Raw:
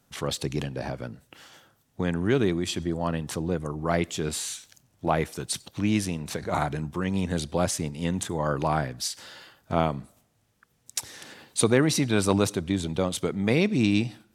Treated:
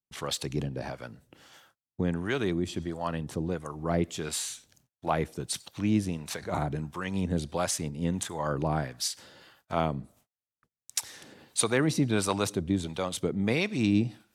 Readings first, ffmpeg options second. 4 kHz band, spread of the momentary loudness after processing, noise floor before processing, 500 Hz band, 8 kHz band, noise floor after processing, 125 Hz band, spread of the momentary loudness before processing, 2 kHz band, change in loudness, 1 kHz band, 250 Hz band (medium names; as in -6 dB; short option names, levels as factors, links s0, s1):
-3.0 dB, 9 LU, -68 dBFS, -4.5 dB, -2.0 dB, under -85 dBFS, -3.0 dB, 11 LU, -3.0 dB, -3.5 dB, -3.5 dB, -3.0 dB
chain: -filter_complex "[0:a]agate=range=0.0224:threshold=0.00112:ratio=16:detection=peak,acrossover=split=620[s0][s1];[s0]aeval=exprs='val(0)*(1-0.7/2+0.7/2*cos(2*PI*1.5*n/s))':c=same[s2];[s1]aeval=exprs='val(0)*(1-0.7/2-0.7/2*cos(2*PI*1.5*n/s))':c=same[s3];[s2][s3]amix=inputs=2:normalize=0"